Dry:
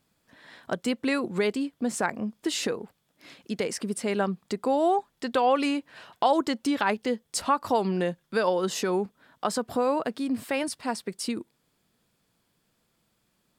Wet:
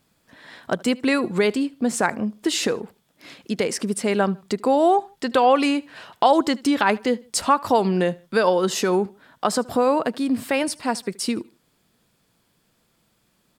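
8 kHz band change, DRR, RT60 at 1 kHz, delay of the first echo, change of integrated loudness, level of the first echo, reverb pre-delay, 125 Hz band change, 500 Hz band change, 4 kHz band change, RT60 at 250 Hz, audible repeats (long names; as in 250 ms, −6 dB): +6.0 dB, no reverb audible, no reverb audible, 76 ms, +6.0 dB, −23.5 dB, no reverb audible, +6.0 dB, +6.0 dB, +6.0 dB, no reverb audible, 2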